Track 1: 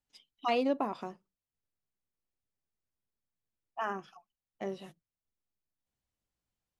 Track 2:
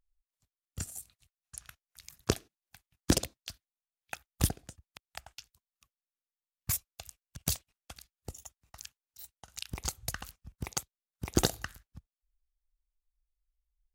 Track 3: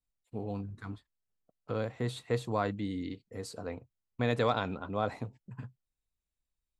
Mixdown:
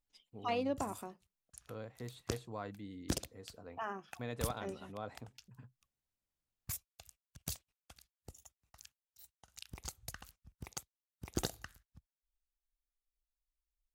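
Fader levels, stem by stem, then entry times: -6.0, -10.0, -12.5 dB; 0.00, 0.00, 0.00 s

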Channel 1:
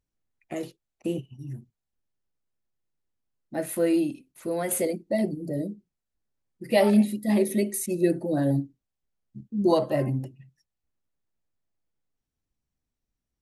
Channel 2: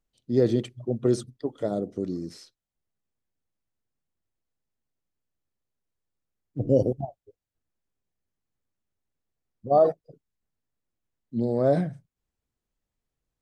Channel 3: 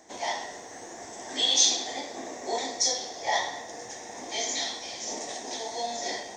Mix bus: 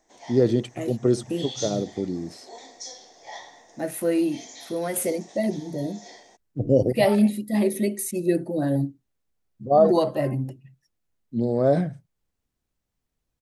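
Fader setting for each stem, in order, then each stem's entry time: +0.5, +2.0, -13.0 dB; 0.25, 0.00, 0.00 s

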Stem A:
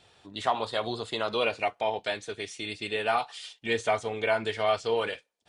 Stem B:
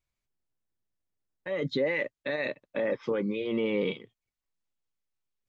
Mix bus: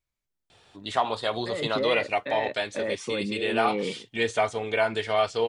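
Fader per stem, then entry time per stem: +2.0, -1.0 dB; 0.50, 0.00 s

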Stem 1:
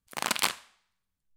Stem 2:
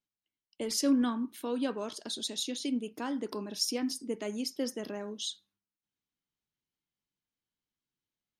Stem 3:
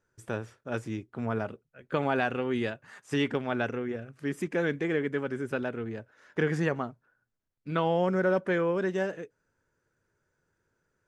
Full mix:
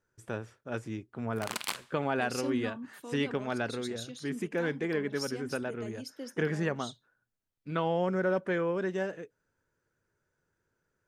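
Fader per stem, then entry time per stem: -8.0, -8.5, -3.0 dB; 1.25, 1.60, 0.00 s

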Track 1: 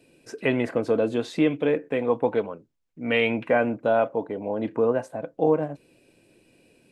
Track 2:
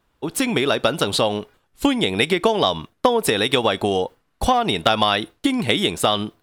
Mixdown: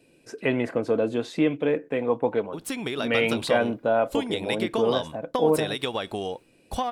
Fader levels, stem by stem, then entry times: -1.0, -10.5 dB; 0.00, 2.30 s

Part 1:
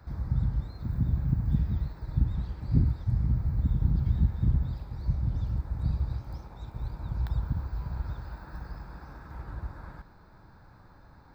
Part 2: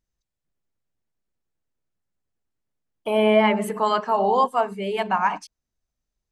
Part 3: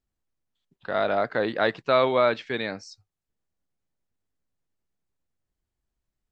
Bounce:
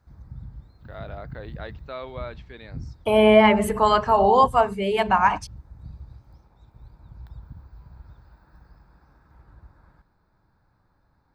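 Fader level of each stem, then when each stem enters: -12.0, +3.0, -15.0 dB; 0.00, 0.00, 0.00 s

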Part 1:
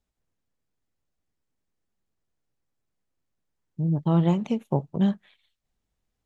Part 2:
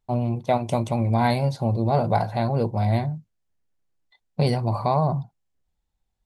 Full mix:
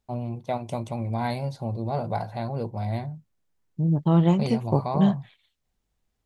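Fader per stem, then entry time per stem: +2.0, -7.0 dB; 0.00, 0.00 s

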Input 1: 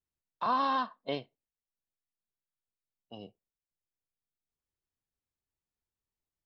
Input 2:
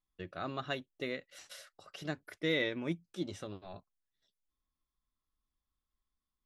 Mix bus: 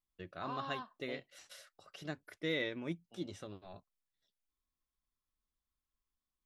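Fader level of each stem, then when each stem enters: -14.5, -4.0 dB; 0.00, 0.00 s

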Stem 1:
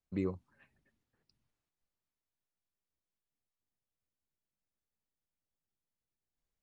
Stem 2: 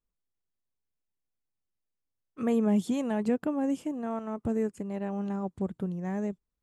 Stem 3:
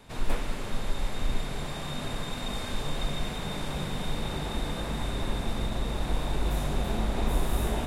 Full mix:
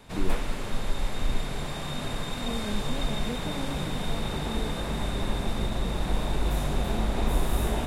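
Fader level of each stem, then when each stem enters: +1.0, -9.5, +1.5 dB; 0.00, 0.00, 0.00 s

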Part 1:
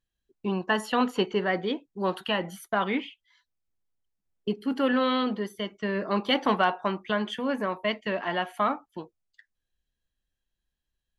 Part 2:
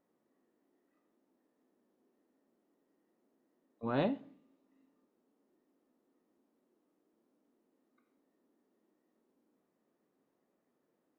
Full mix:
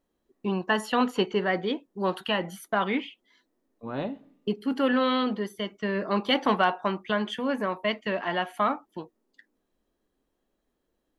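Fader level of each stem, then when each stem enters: +0.5, 0.0 dB; 0.00, 0.00 s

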